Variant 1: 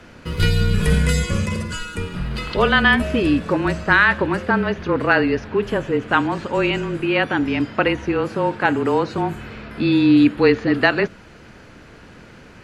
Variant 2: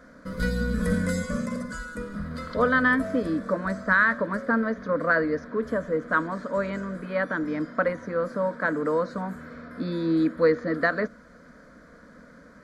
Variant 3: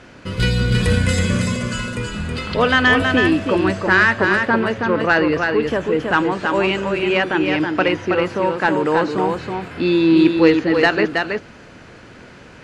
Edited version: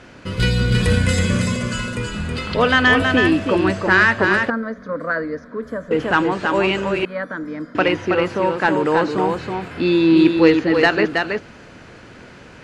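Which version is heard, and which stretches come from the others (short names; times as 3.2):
3
4.5–5.91 from 2
7.05–7.75 from 2
not used: 1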